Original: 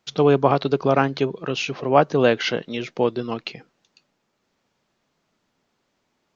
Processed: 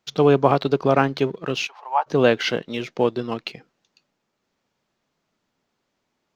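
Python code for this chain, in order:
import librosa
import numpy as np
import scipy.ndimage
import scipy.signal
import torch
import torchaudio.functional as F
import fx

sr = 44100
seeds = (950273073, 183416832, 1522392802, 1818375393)

p1 = np.sign(x) * np.maximum(np.abs(x) - 10.0 ** (-39.0 / 20.0), 0.0)
p2 = x + (p1 * 10.0 ** (-4.0 / 20.0))
p3 = fx.ladder_highpass(p2, sr, hz=830.0, resonance_pct=80, at=(1.66, 2.06), fade=0.02)
y = p3 * 10.0 ** (-3.5 / 20.0)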